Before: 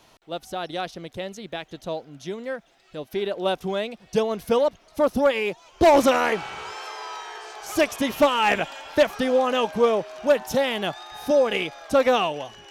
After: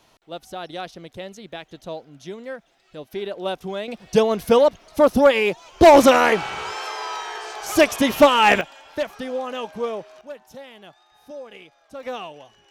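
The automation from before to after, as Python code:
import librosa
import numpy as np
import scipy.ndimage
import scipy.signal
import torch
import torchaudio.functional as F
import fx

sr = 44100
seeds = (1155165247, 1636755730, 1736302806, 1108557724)

y = fx.gain(x, sr, db=fx.steps((0.0, -2.5), (3.88, 5.5), (8.61, -7.0), (10.21, -18.0), (12.03, -11.0)))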